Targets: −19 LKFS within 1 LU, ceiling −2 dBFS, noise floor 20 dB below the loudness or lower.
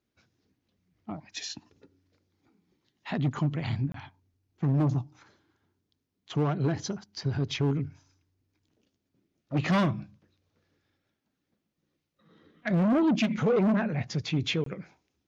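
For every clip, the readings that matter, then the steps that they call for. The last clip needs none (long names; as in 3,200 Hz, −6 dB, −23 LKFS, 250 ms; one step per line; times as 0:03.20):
share of clipped samples 0.2%; peaks flattened at −18.5 dBFS; number of dropouts 2; longest dropout 23 ms; integrated loudness −29.0 LKFS; sample peak −18.5 dBFS; target loudness −19.0 LKFS
→ clipped peaks rebuilt −18.5 dBFS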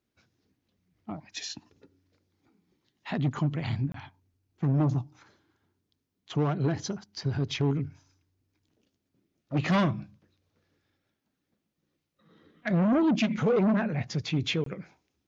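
share of clipped samples 0.0%; number of dropouts 2; longest dropout 23 ms
→ repair the gap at 0:03.92/0:14.64, 23 ms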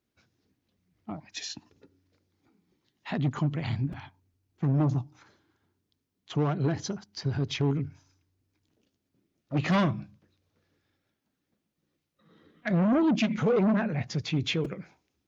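number of dropouts 0; integrated loudness −29.0 LKFS; sample peak −14.0 dBFS; target loudness −19.0 LKFS
→ level +10 dB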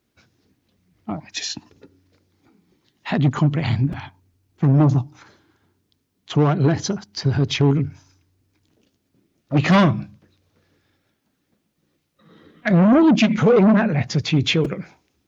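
integrated loudness −19.0 LKFS; sample peak −4.0 dBFS; background noise floor −71 dBFS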